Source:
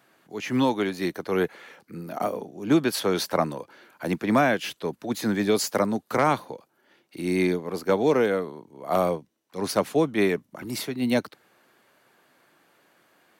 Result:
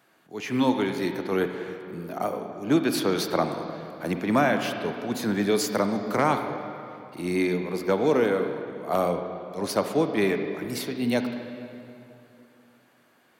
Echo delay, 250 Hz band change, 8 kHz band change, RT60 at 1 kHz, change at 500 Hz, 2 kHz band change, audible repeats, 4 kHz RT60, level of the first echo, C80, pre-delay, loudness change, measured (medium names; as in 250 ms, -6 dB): no echo, 0.0 dB, -1.5 dB, 2.6 s, -0.5 dB, -0.5 dB, no echo, 2.1 s, no echo, 7.5 dB, 32 ms, -1.0 dB